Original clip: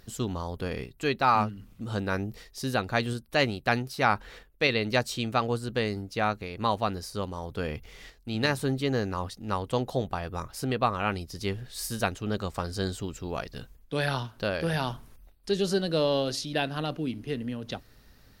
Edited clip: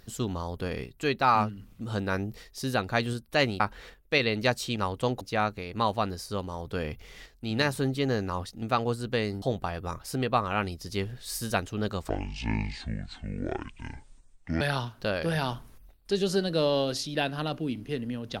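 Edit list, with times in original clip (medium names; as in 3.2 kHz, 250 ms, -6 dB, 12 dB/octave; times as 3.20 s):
3.60–4.09 s: delete
5.25–6.05 s: swap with 9.46–9.91 s
12.58–13.99 s: speed 56%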